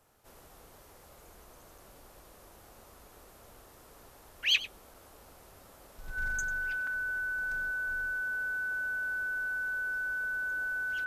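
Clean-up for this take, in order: band-stop 1.5 kHz, Q 30; interpolate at 1.78/4.94/6.87 s, 3.6 ms; inverse comb 96 ms -16 dB

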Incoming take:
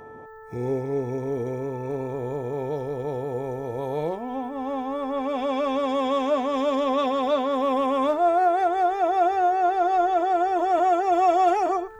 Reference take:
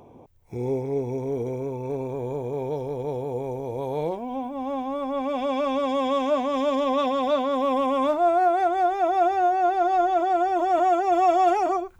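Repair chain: de-hum 439.5 Hz, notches 4

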